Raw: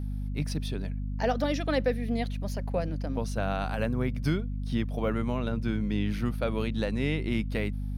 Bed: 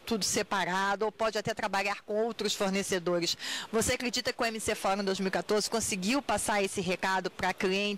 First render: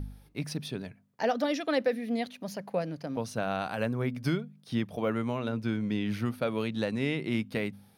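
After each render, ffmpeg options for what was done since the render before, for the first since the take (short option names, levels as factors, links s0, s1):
-af "bandreject=f=50:t=h:w=4,bandreject=f=100:t=h:w=4,bandreject=f=150:t=h:w=4,bandreject=f=200:t=h:w=4,bandreject=f=250:t=h:w=4"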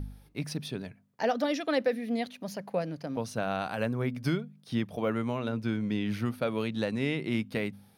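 -af anull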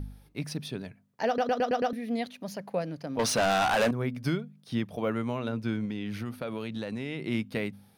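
-filter_complex "[0:a]asettb=1/sr,asplit=3[s0][s1][s2];[s0]atrim=end=3.194[s3];[s1]atrim=start=3.19:end=3.91,asetpts=PTS-STARTPTS,afade=t=in:d=0.004:c=qsin,afade=t=out:st=0.716:d=0.004:c=qsin,asplit=2[s4][s5];[s5]highpass=f=720:p=1,volume=22.4,asoftclip=type=tanh:threshold=0.141[s6];[s4][s6]amix=inputs=2:normalize=0,lowpass=f=7500:p=1,volume=0.501[s7];[s2]atrim=start=3.906[s8];[s3][s7]acrossfade=d=0.004:c1=hsin:c2=qsin[s9];[s9][s8]acrossfade=d=0.004:c1=qsin:c2=hsin,asettb=1/sr,asplit=3[s10][s11][s12];[s10]atrim=end=5.854[s13];[s11]atrim=start=5.85:end=7.22,asetpts=PTS-STARTPTS,afade=t=in:d=0.004:c=qsin,afade=t=out:st=1.366:d=0.004:c=qsin,acompressor=threshold=0.0316:ratio=6:attack=3.2:release=140:knee=1:detection=peak[s14];[s12]atrim=start=7.216[s15];[s13][s14]acrossfade=d=0.004:c1=hsin:c2=qsin[s16];[s16][s15]acrossfade=d=0.004:c1=qsin:c2=hsin,asplit=7[s17][s18][s19][s20][s21][s22][s23];[s17]atrim=end=1.382[s24];[s18]atrim=start=1.268:end=1.382[s25];[s19]atrim=start=1.268:end=1.382[s26];[s20]atrim=start=1.268:end=1.382[s27];[s21]atrim=start=1.268:end=1.382[s28];[s22]atrim=start=1.268:end=1.382[s29];[s23]atrim=start=1.928[s30];[s24][s25]acrossfade=d=0.004:c1=hsin:c2=hsin[s31];[s31][s26]acrossfade=d=0.004:c1=hsin:c2=hsin[s32];[s32][s27]acrossfade=d=0.004:c1=hsin:c2=hsin[s33];[s33][s28]acrossfade=d=0.004:c1=hsin:c2=hsin[s34];[s34][s29]acrossfade=d=0.004:c1=hsin:c2=hsin[s35];[s35][s30]acrossfade=d=0.004:c1=hsin:c2=hsin"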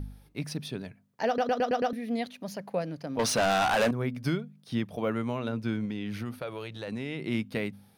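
-filter_complex "[0:a]asettb=1/sr,asplit=3[s0][s1][s2];[s0]atrim=end=6.394[s3];[s1]atrim=start=6.39:end=6.88,asetpts=PTS-STARTPTS,afade=t=in:d=0.004:c=qsin,afade=t=out:st=0.486:d=0.004:c=qsin,equalizer=f=230:w=3:g=-14.5[s4];[s2]atrim=start=6.876[s5];[s3][s4]acrossfade=d=0.004:c1=hsin:c2=qsin[s6];[s6][s5]acrossfade=d=0.004:c1=qsin:c2=hsin"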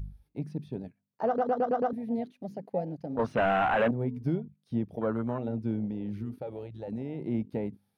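-filter_complex "[0:a]acrossover=split=2900[s0][s1];[s1]acompressor=threshold=0.00398:ratio=4:attack=1:release=60[s2];[s0][s2]amix=inputs=2:normalize=0,afwtdn=0.0251"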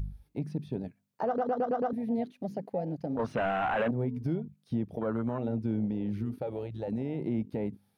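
-filter_complex "[0:a]asplit=2[s0][s1];[s1]acompressor=threshold=0.0126:ratio=6,volume=0.708[s2];[s0][s2]amix=inputs=2:normalize=0,alimiter=limit=0.0794:level=0:latency=1:release=78"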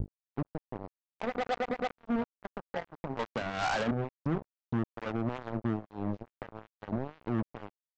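-filter_complex "[0:a]acrossover=split=490[s0][s1];[s0]aeval=exprs='val(0)*(1-0.7/2+0.7/2*cos(2*PI*2.3*n/s))':c=same[s2];[s1]aeval=exprs='val(0)*(1-0.7/2-0.7/2*cos(2*PI*2.3*n/s))':c=same[s3];[s2][s3]amix=inputs=2:normalize=0,aresample=16000,acrusher=bits=4:mix=0:aa=0.5,aresample=44100"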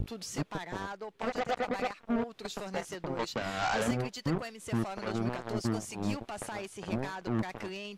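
-filter_complex "[1:a]volume=0.266[s0];[0:a][s0]amix=inputs=2:normalize=0"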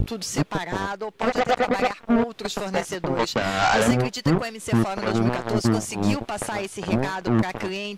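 -af "volume=3.55"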